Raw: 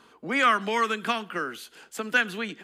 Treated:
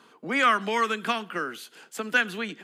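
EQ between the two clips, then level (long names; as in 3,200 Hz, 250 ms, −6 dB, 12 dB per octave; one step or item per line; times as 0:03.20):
high-pass filter 120 Hz 24 dB per octave
0.0 dB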